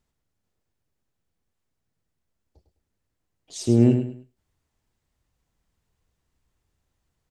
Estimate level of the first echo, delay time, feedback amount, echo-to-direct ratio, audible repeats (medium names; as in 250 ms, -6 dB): -8.5 dB, 103 ms, 29%, -8.0 dB, 3